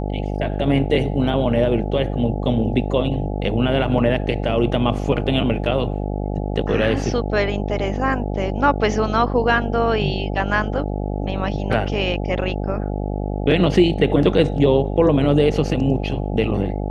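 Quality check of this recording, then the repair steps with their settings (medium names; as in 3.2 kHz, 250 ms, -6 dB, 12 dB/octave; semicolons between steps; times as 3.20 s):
buzz 50 Hz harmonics 17 -24 dBFS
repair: de-hum 50 Hz, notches 17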